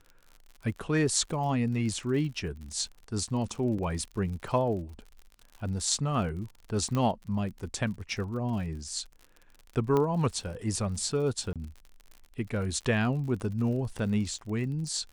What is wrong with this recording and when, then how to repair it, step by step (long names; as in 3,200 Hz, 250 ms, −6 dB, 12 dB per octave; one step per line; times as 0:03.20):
surface crackle 58 per second −39 dBFS
0:03.78–0:03.79: drop-out 5.4 ms
0:06.95: click −18 dBFS
0:09.97: click −16 dBFS
0:11.53–0:11.56: drop-out 27 ms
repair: click removal
repair the gap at 0:03.78, 5.4 ms
repair the gap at 0:11.53, 27 ms